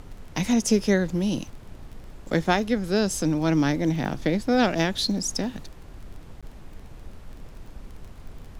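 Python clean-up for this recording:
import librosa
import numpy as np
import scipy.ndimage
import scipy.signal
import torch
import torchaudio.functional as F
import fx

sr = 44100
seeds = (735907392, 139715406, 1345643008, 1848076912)

y = fx.fix_declick_ar(x, sr, threshold=6.5)
y = fx.fix_interpolate(y, sr, at_s=(6.41,), length_ms=16.0)
y = fx.noise_reduce(y, sr, print_start_s=1.45, print_end_s=1.95, reduce_db=26.0)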